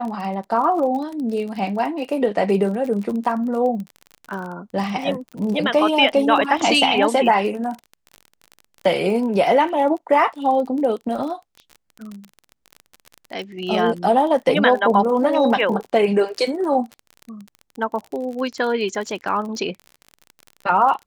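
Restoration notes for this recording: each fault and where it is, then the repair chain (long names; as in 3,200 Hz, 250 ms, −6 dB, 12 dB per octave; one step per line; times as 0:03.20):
surface crackle 33 per second −28 dBFS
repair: click removal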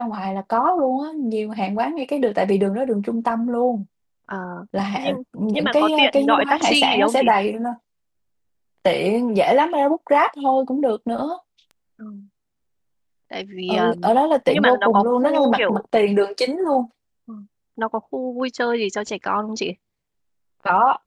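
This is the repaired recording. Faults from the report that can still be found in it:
none of them is left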